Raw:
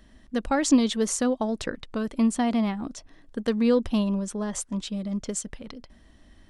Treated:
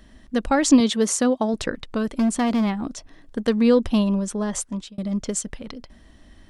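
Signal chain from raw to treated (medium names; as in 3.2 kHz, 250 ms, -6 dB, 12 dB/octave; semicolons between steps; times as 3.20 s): 0.80–1.54 s: high-pass 100 Hz; 2.06–3.40 s: overload inside the chain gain 21 dB; 4.48–4.98 s: fade out equal-power; trim +4.5 dB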